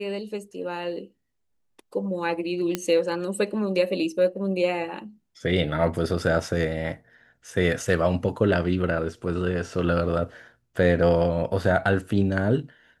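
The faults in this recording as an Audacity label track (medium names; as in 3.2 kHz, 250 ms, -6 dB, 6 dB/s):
2.750000	2.750000	pop -10 dBFS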